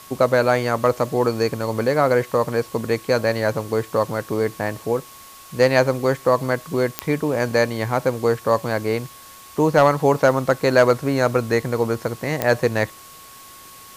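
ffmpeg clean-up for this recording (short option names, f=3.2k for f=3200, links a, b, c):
-af "adeclick=t=4,bandreject=f=1.1k:w=30,afwtdn=0.0071"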